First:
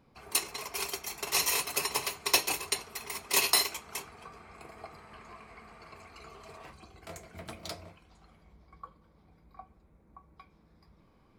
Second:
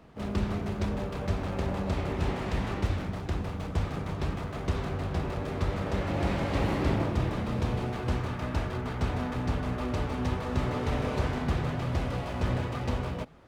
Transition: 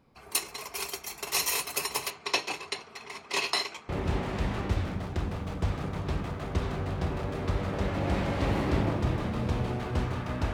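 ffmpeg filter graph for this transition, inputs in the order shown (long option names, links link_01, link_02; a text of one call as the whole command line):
ffmpeg -i cue0.wav -i cue1.wav -filter_complex "[0:a]asettb=1/sr,asplit=3[link_01][link_02][link_03];[link_01]atrim=end=2.104[link_04];[link_02]atrim=start=2.1:end=3.89,asetpts=PTS-STARTPTS,afade=type=in:duration=0.004:curve=qsin,afade=type=out:start_time=1.786:duration=0.004:curve=qsin,highpass=110,lowpass=4600[link_05];[link_03]atrim=start=3.886[link_06];[link_04][link_05]acrossfade=duration=0.004:curve1=hsin:curve2=qsin[link_07];[link_07][link_06]acrossfade=duration=0.004:curve1=qsin:curve2=hsin,apad=whole_dur=10.53,atrim=end=10.53,atrim=end=3.892[link_08];[1:a]atrim=start=2.018:end=8.66[link_09];[link_08][link_09]acrossfade=duration=0.004:curve1=hsin:curve2=hsin" out.wav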